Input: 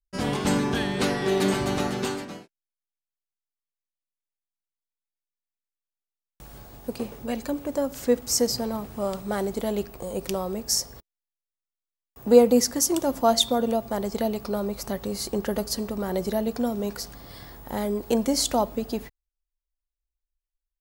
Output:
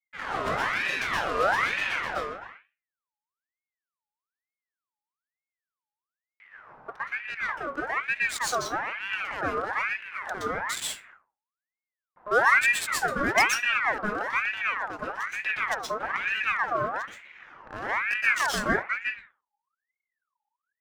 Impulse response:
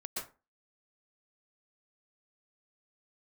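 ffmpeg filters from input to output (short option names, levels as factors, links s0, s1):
-filter_complex "[0:a]adynamicsmooth=sensitivity=5:basefreq=770[s0];[1:a]atrim=start_sample=2205[s1];[s0][s1]afir=irnorm=-1:irlink=0,aeval=exprs='val(0)*sin(2*PI*1500*n/s+1500*0.45/1.1*sin(2*PI*1.1*n/s))':c=same"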